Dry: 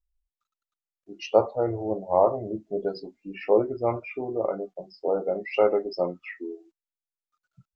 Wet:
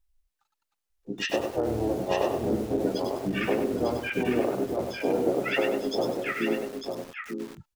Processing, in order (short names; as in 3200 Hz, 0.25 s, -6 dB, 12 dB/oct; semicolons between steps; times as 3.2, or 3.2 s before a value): in parallel at -1 dB: limiter -16 dBFS, peak gain reduction 10 dB; on the sum: compressor 16:1, threshold -25 dBFS, peak gain reduction 16 dB; harmoniser -7 st -3 dB, +4 st -11 dB; on a send: echo 0.899 s -6 dB; on the sum: lo-fi delay 98 ms, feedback 35%, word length 7-bit, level -4.5 dB